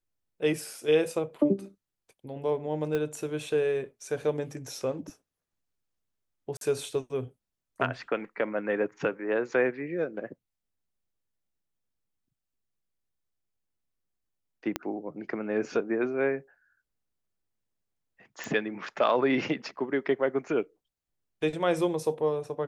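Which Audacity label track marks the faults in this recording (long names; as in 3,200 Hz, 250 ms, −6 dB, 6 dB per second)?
2.950000	2.950000	click −18 dBFS
6.570000	6.610000	drop-out 42 ms
14.760000	14.760000	click −13 dBFS
18.440000	18.440000	click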